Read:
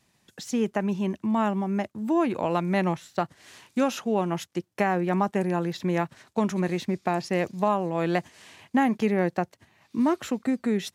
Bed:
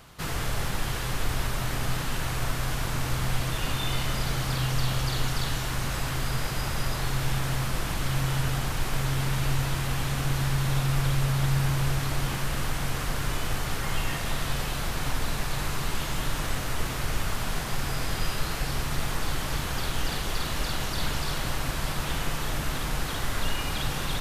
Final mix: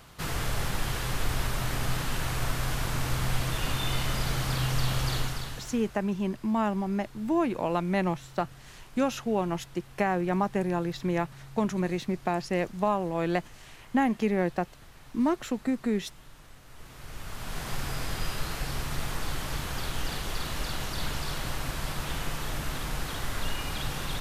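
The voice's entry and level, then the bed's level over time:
5.20 s, −2.5 dB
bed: 0:05.15 −1 dB
0:06.07 −22.5 dB
0:16.62 −22.5 dB
0:17.68 −3.5 dB

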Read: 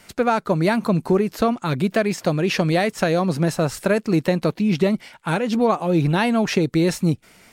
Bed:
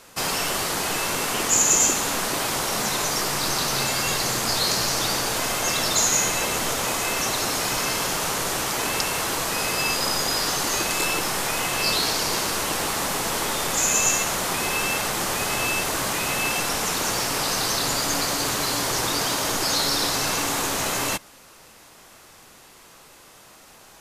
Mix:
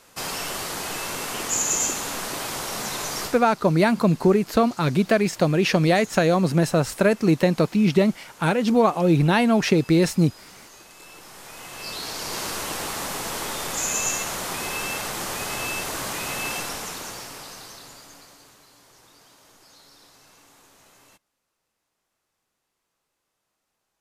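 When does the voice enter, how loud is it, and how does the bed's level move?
3.15 s, +0.5 dB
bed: 0:03.25 −5 dB
0:03.45 −23.5 dB
0:10.95 −23.5 dB
0:12.45 −4.5 dB
0:16.55 −4.5 dB
0:18.69 −30 dB

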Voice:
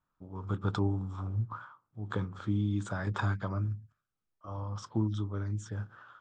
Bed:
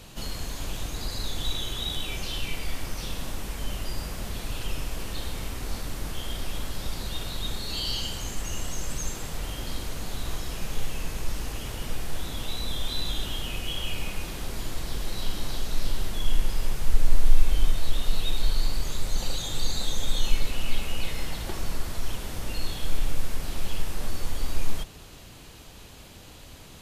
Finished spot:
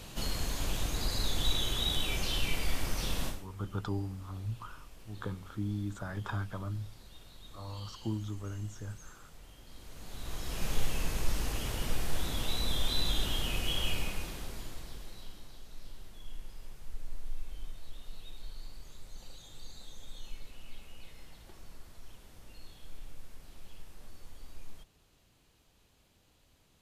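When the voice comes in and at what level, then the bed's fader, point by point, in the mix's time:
3.10 s, −5.0 dB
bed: 0:03.27 −0.5 dB
0:03.47 −20.5 dB
0:09.66 −20.5 dB
0:10.67 −1 dB
0:13.88 −1 dB
0:15.51 −20.5 dB

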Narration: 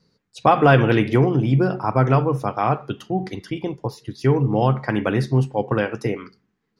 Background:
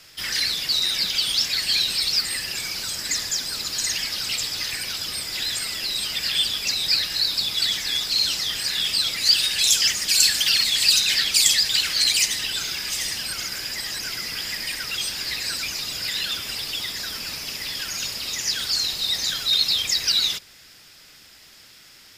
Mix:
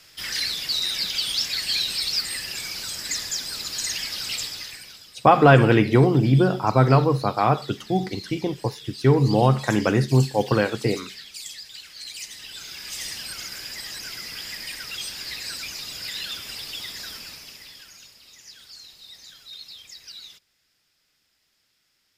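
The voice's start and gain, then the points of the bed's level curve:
4.80 s, +0.5 dB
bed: 0:04.42 −3 dB
0:05.14 −20 dB
0:11.92 −20 dB
0:13.04 −5.5 dB
0:17.10 −5.5 dB
0:18.15 −21 dB

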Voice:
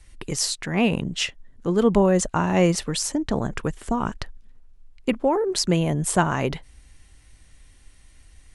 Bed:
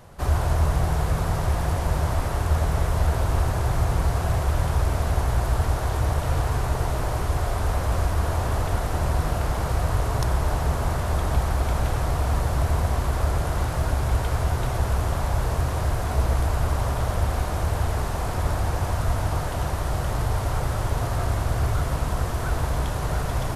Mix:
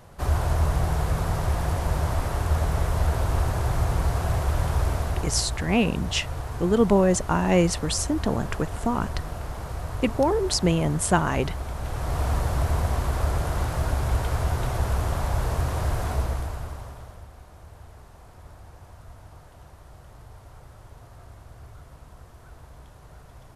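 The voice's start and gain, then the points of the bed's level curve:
4.95 s, −1.0 dB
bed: 0:04.89 −1.5 dB
0:05.61 −9 dB
0:11.77 −9 dB
0:12.21 −1.5 dB
0:16.08 −1.5 dB
0:17.30 −22 dB

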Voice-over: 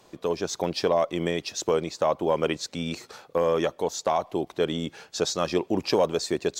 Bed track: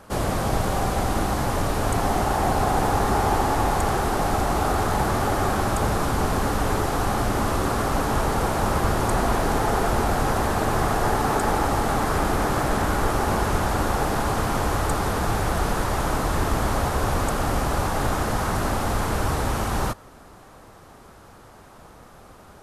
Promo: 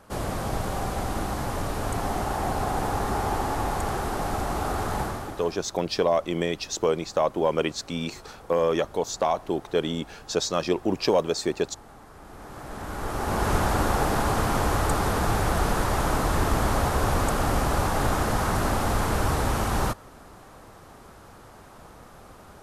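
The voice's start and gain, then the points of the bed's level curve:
5.15 s, +0.5 dB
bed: 0:05.01 −5.5 dB
0:05.68 −25.5 dB
0:12.14 −25.5 dB
0:13.51 −0.5 dB

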